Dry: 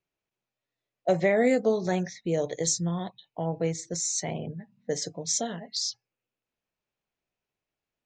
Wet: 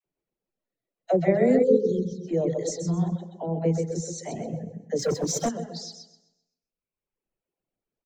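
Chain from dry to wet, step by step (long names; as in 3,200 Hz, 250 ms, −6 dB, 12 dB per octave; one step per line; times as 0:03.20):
parametric band 81 Hz −12 dB 1.6 octaves
repeating echo 129 ms, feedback 40%, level −4.5 dB
convolution reverb RT60 0.70 s, pre-delay 117 ms, DRR 6.5 dB
reverb reduction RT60 1.4 s
tilt shelving filter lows +9 dB, about 720 Hz
notch filter 3,500 Hz, Q 23
all-pass dispersion lows, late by 57 ms, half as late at 620 Hz
0:01.63–0:02.28: time-frequency box erased 540–3,000 Hz
0:04.99–0:05.49: leveller curve on the samples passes 2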